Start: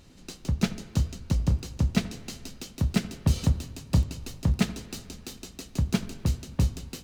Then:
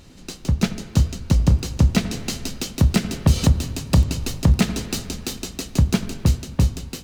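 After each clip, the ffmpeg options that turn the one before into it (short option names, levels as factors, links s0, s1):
-af "dynaudnorm=f=440:g=7:m=2,alimiter=limit=0.237:level=0:latency=1:release=158,volume=2.24"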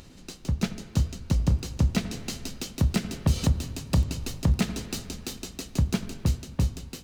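-af "acompressor=mode=upward:threshold=0.0158:ratio=2.5,volume=0.447"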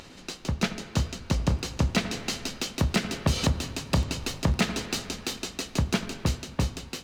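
-filter_complex "[0:a]asplit=2[s0][s1];[s1]highpass=f=720:p=1,volume=4.47,asoftclip=type=tanh:threshold=0.251[s2];[s0][s2]amix=inputs=2:normalize=0,lowpass=f=3300:p=1,volume=0.501,volume=1.19"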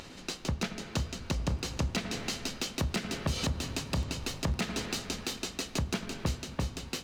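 -af "alimiter=limit=0.0891:level=0:latency=1:release=284"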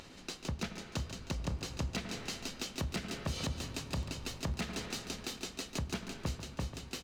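-af "aecho=1:1:142:0.266,volume=0.531"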